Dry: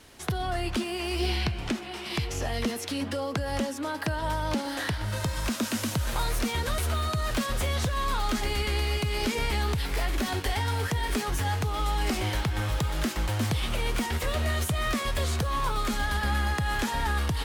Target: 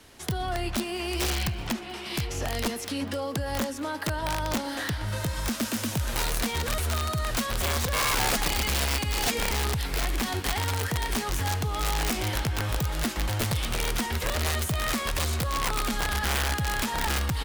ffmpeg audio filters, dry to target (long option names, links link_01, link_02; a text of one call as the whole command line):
ffmpeg -i in.wav -filter_complex "[0:a]asettb=1/sr,asplit=3[link_01][link_02][link_03];[link_01]atrim=end=7.644[link_04];[link_02]atrim=start=7.64:end=9.42,asetpts=PTS-STARTPTS,afade=type=in:duration=0.004:curve=qsin,afade=type=out:start_time=1.776:duration=0.004:curve=qsin,aecho=1:1:3.7:0.58,atrim=end_sample=78498[link_05];[link_03]atrim=start=9.416[link_06];[link_04][link_05]acrossfade=duration=0.004:curve1=hsin:curve2=qsin[link_07];[link_07][link_06]acrossfade=duration=0.004:curve1=qsin:curve2=hsin,acrossover=split=120|7600[link_08][link_09][link_10];[link_08]crystalizer=i=8.5:c=0[link_11];[link_11][link_09][link_10]amix=inputs=3:normalize=0,aeval=exprs='(mod(10*val(0)+1,2)-1)/10':channel_layout=same,aecho=1:1:198:0.075" out.wav